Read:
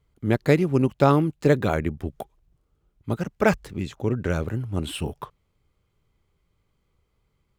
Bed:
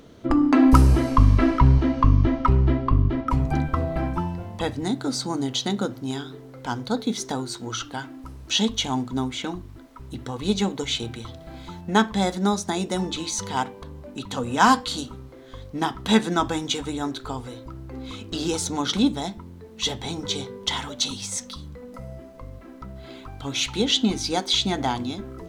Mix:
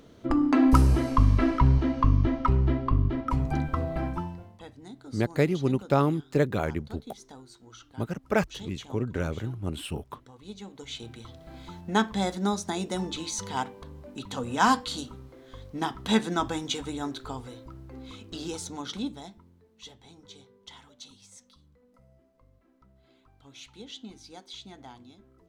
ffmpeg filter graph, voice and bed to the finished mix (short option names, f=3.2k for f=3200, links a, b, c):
-filter_complex "[0:a]adelay=4900,volume=-5dB[a];[1:a]volume=10dB,afade=t=out:st=4.08:d=0.51:silence=0.177828,afade=t=in:st=10.65:d=0.96:silence=0.188365,afade=t=out:st=17.2:d=2.71:silence=0.141254[b];[a][b]amix=inputs=2:normalize=0"